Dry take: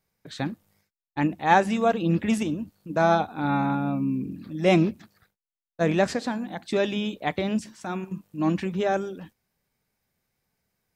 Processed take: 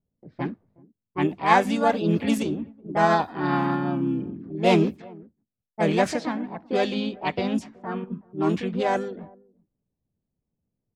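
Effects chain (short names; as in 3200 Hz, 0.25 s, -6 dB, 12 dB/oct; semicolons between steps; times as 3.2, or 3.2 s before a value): outdoor echo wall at 65 m, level -24 dB; low-pass opened by the level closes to 330 Hz, open at -19.5 dBFS; harmoniser +4 st -3 dB; gain -1 dB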